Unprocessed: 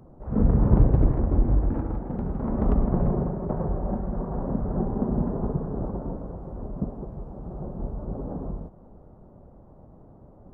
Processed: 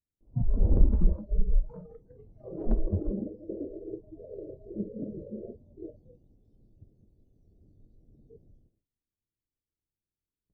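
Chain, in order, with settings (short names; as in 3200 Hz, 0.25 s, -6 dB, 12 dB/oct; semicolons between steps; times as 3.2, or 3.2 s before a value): pitch shift -10.5 st; gate with hold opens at -38 dBFS; spectral noise reduction 25 dB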